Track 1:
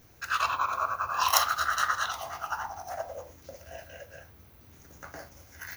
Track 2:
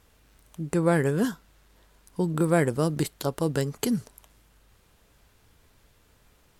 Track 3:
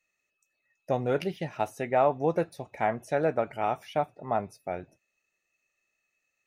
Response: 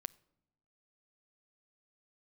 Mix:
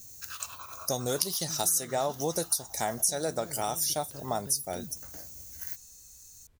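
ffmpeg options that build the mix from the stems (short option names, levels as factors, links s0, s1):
-filter_complex "[0:a]equalizer=f=1300:t=o:w=2.7:g=-13,acompressor=threshold=0.00891:ratio=6,crystalizer=i=2:c=0,volume=0.841[s0];[1:a]acompressor=threshold=0.02:ratio=4,lowshelf=f=240:g=11,adelay=900,volume=0.224[s1];[2:a]bass=f=250:g=1,treble=f=4000:g=4,aexciter=amount=14.9:drive=9.5:freq=4100,volume=1.12[s2];[s0][s1][s2]amix=inputs=3:normalize=0,acompressor=threshold=0.0355:ratio=2.5"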